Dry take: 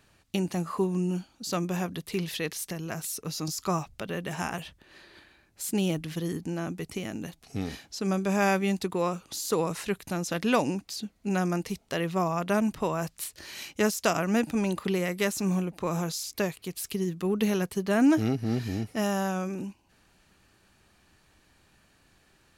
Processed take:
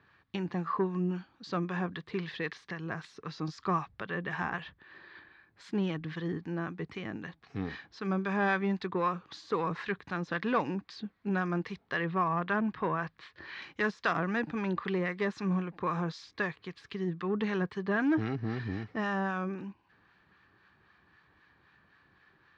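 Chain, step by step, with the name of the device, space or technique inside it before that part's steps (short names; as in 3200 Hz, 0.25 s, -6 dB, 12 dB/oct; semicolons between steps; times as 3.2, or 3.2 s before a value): guitar amplifier with harmonic tremolo (harmonic tremolo 3.8 Hz, depth 50%, crossover 880 Hz; soft clip -20 dBFS, distortion -18 dB; speaker cabinet 86–3700 Hz, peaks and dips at 240 Hz -4 dB, 620 Hz -6 dB, 1100 Hz +7 dB, 1700 Hz +8 dB, 2800 Hz -5 dB); 12.04–13.62 LPF 4600 Hz 12 dB/oct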